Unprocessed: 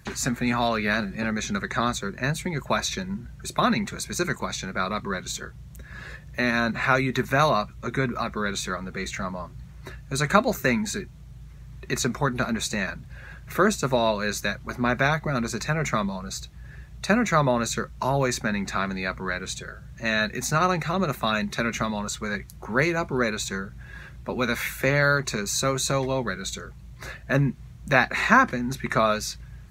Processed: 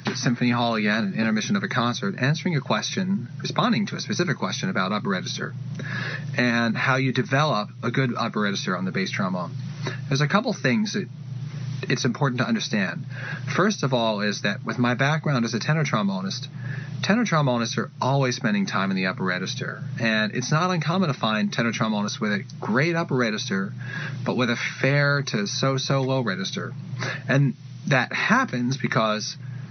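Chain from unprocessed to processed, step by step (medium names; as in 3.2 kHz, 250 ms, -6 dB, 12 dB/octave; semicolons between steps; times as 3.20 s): FFT band-pass 110–6100 Hz; tone controls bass +6 dB, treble +6 dB; three bands compressed up and down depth 70%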